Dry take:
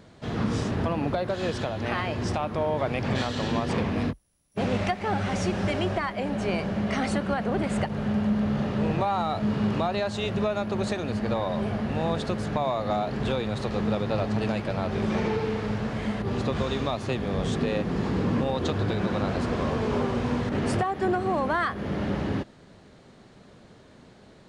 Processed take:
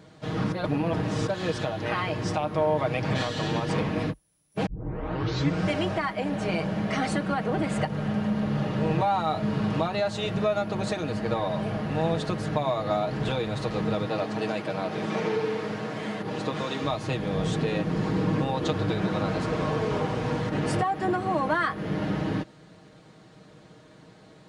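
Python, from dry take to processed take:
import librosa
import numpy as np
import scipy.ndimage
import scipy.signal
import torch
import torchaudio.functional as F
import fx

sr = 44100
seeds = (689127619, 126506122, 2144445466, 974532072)

y = fx.highpass(x, sr, hz=190.0, slope=12, at=(14.06, 16.84))
y = fx.edit(y, sr, fx.reverse_span(start_s=0.52, length_s=0.75),
    fx.tape_start(start_s=4.66, length_s=1.03), tone=tone)
y = scipy.signal.sosfilt(scipy.signal.butter(2, 54.0, 'highpass', fs=sr, output='sos'), y)
y = y + 0.65 * np.pad(y, (int(6.4 * sr / 1000.0), 0))[:len(y)]
y = y * 10.0 ** (-1.0 / 20.0)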